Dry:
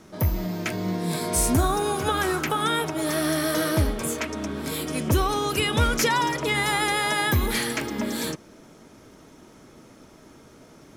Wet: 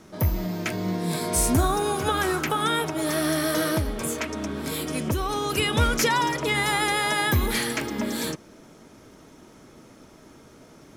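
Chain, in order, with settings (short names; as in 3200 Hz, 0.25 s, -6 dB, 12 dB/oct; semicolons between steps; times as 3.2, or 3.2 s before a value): 3.77–5.5 compressor 5:1, threshold -22 dBFS, peak gain reduction 6.5 dB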